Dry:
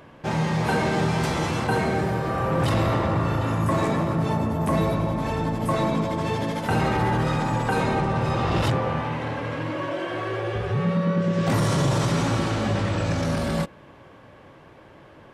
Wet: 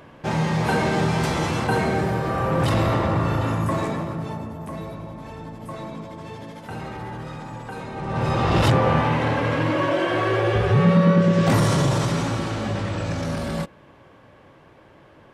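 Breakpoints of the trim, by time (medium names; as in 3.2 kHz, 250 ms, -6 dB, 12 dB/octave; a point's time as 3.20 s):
3.46 s +1.5 dB
4.75 s -11 dB
7.92 s -11 dB
8.21 s +1 dB
8.94 s +7 dB
11.06 s +7 dB
12.38 s -2 dB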